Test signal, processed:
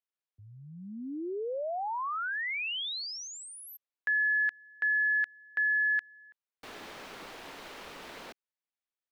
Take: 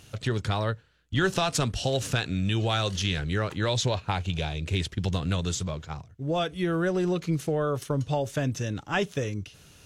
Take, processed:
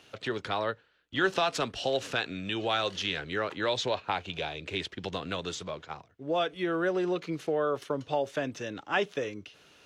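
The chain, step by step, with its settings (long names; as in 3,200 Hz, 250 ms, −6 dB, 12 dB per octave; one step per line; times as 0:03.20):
three-way crossover with the lows and the highs turned down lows −19 dB, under 260 Hz, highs −14 dB, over 4,600 Hz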